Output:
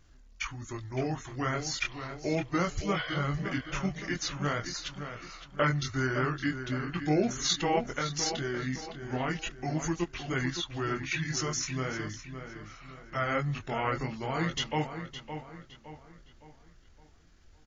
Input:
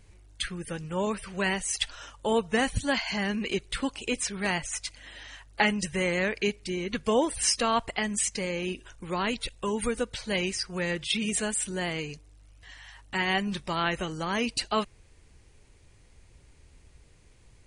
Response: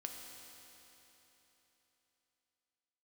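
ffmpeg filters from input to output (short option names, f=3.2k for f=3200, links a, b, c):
-filter_complex "[0:a]flanger=delay=16:depth=6.5:speed=0.39,asetrate=31183,aresample=44100,atempo=1.41421,asplit=2[a][b];[b]adelay=563,lowpass=f=3.6k:p=1,volume=-9dB,asplit=2[c][d];[d]adelay=563,lowpass=f=3.6k:p=1,volume=0.42,asplit=2[e][f];[f]adelay=563,lowpass=f=3.6k:p=1,volume=0.42,asplit=2[g][h];[h]adelay=563,lowpass=f=3.6k:p=1,volume=0.42,asplit=2[i][j];[j]adelay=563,lowpass=f=3.6k:p=1,volume=0.42[k];[a][c][e][g][i][k]amix=inputs=6:normalize=0"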